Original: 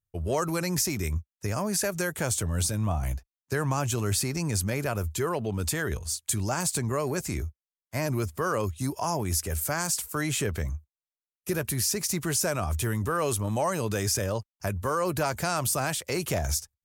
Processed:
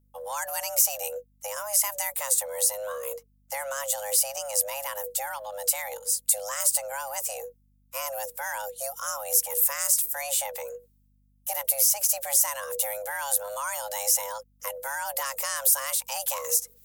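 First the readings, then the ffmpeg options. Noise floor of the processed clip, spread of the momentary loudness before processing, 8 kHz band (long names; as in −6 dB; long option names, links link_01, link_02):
−65 dBFS, 6 LU, +5.5 dB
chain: -af "afreqshift=410,areverse,acompressor=mode=upward:threshold=-44dB:ratio=2.5,areverse,aeval=exprs='val(0)+0.00158*(sin(2*PI*50*n/s)+sin(2*PI*2*50*n/s)/2+sin(2*PI*3*50*n/s)/3+sin(2*PI*4*50*n/s)/4+sin(2*PI*5*50*n/s)/5)':channel_layout=same,aemphasis=mode=production:type=75fm,volume=-6.5dB"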